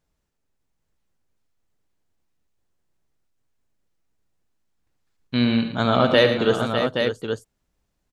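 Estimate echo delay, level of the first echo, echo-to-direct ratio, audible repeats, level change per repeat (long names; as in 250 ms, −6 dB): 74 ms, −12.0 dB, −3.0 dB, 5, repeats not evenly spaced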